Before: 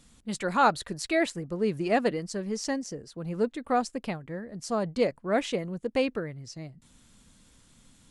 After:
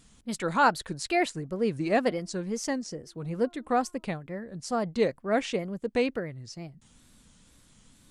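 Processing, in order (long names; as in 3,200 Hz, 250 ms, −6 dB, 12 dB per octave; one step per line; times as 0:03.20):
0:02.01–0:04.05: hum removal 335.5 Hz, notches 4
tape wow and flutter 130 cents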